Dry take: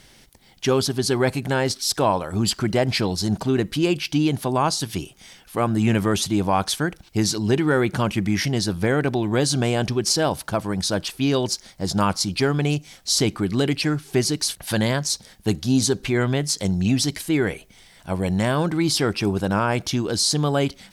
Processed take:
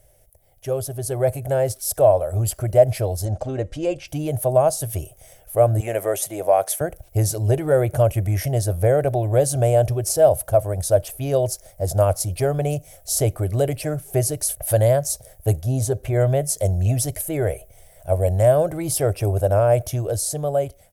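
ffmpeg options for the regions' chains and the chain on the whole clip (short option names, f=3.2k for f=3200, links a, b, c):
-filter_complex "[0:a]asettb=1/sr,asplit=3[a][b][c];[a]atrim=end=3.254[d];[b]atrim=start=3.25:end=4.08,asetpts=PTS-STARTPTS,afade=t=in:d=0.004:c=qsin,afade=t=out:st=0.826:d=0.004:c=qsin,lowpass=f=6.8k:w=0.5412,lowpass=f=6.8k:w=1.3066,aecho=1:1:3.7:0.44,atrim=end_sample=36603[e];[c]atrim=start=4.076[f];[d][e]acrossfade=d=0.004:c1=hsin:c2=qsin[g];[g][f]acrossfade=d=0.004:c1=qsin:c2=hsin,asettb=1/sr,asplit=3[h][i][j];[h]atrim=end=5.804[k];[i]atrim=start=5.8:end=6.81,asetpts=PTS-STARTPTS,afade=t=in:d=0.004:c=qsin,afade=t=out:st=1.006:d=0.004:c=qsin,highpass=320,equalizer=f=2k:w=2.9:g=5.5[l];[j]atrim=start=6.806[m];[k][l]acrossfade=d=0.004:c1=hsin:c2=qsin[n];[n][m]acrossfade=d=0.004:c1=qsin:c2=hsin,asettb=1/sr,asplit=3[o][p][q];[o]atrim=end=15.614[r];[p]atrim=start=15.61:end=16.13,asetpts=PTS-STARTPTS,afade=t=in:d=0.004:c=qsin,afade=t=out:st=0.516:d=0.004:c=qsin,highpass=44,highshelf=f=3.9k:g=-7[s];[q]atrim=start=16.126[t];[r][s]acrossfade=d=0.004:c1=hsin:c2=qsin[u];[u][t]acrossfade=d=0.004:c1=qsin:c2=hsin,firequalizer=gain_entry='entry(110,0);entry(200,-24);entry(610,6);entry(910,-17);entry(2200,-17);entry(4200,-24);entry(6100,-13);entry(11000,2)':delay=0.05:min_phase=1,dynaudnorm=f=320:g=7:m=8.5dB"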